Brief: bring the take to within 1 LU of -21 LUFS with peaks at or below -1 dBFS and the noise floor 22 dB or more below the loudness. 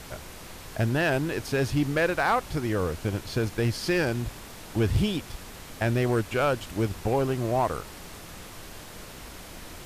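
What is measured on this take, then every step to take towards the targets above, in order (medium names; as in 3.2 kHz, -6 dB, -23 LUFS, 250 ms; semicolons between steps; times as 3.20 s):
clipped samples 0.5%; clipping level -16.0 dBFS; noise floor -44 dBFS; noise floor target -49 dBFS; loudness -27.0 LUFS; peak level -16.0 dBFS; loudness target -21.0 LUFS
-> clip repair -16 dBFS; noise print and reduce 6 dB; trim +6 dB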